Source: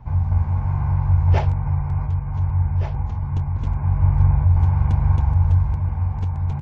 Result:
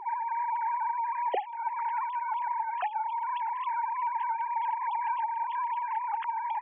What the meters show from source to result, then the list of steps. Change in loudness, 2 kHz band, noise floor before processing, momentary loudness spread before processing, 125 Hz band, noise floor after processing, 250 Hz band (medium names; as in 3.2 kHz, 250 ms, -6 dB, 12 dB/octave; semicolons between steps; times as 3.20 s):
-10.5 dB, no reading, -27 dBFS, 7 LU, under -40 dB, -36 dBFS, under -30 dB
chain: formants replaced by sine waves; peaking EQ 380 Hz +14 dB 0.45 oct; compression 12:1, threshold -20 dBFS, peak gain reduction 19 dB; trim -7.5 dB